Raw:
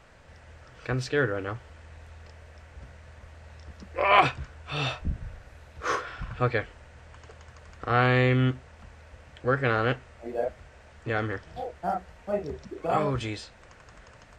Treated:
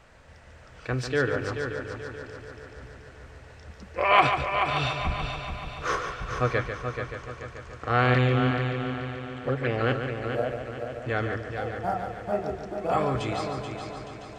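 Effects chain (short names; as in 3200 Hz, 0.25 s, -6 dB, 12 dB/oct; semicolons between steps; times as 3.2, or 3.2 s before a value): 8.14–9.81 envelope flanger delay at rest 11.9 ms, full sweep at -19.5 dBFS; multi-head echo 0.144 s, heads first and third, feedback 63%, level -8 dB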